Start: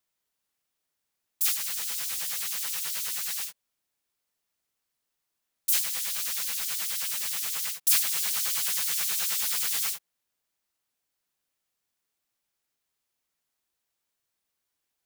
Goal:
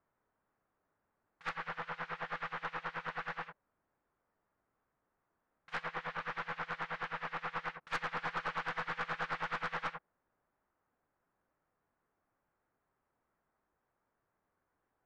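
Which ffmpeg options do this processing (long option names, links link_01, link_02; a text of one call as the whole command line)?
ffmpeg -i in.wav -af "lowpass=frequency=1500:width=0.5412,lowpass=frequency=1500:width=1.3066,aeval=exprs='(tanh(112*val(0)+0.4)-tanh(0.4))/112':channel_layout=same,volume=11.5dB" out.wav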